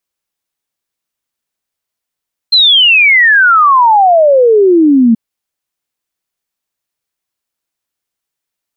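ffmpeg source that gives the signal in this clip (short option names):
-f lavfi -i "aevalsrc='0.668*clip(min(t,2.63-t)/0.01,0,1)*sin(2*PI*4200*2.63/log(220/4200)*(exp(log(220/4200)*t/2.63)-1))':d=2.63:s=44100"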